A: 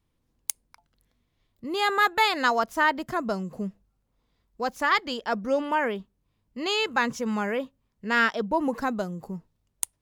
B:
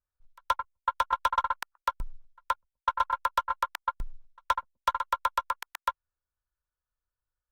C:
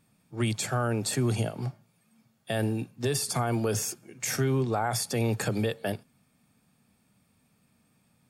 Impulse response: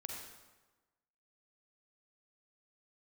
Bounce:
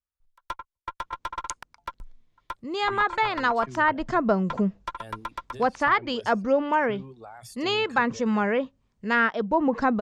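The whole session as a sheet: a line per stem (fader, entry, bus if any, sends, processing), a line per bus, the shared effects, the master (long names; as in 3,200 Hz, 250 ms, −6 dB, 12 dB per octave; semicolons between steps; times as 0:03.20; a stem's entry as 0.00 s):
+2.5 dB, 1.00 s, no send, Chebyshev low-pass filter 7,300 Hz, order 3; speech leveller 0.5 s
−5.0 dB, 0.00 s, no send, one-sided soft clipper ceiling −22.5 dBFS
−14.5 dB, 2.50 s, no send, reverb reduction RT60 1.5 s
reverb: not used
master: treble cut that deepens with the level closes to 2,100 Hz, closed at −17.5 dBFS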